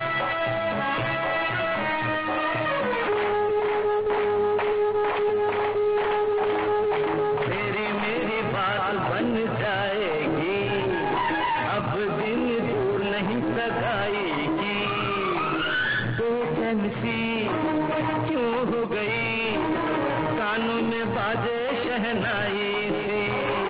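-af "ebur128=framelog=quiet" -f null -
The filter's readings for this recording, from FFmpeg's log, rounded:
Integrated loudness:
  I:         -24.9 LUFS
  Threshold: -34.9 LUFS
Loudness range:
  LRA:         1.6 LU
  Threshold: -44.8 LUFS
  LRA low:   -25.3 LUFS
  LRA high:  -23.7 LUFS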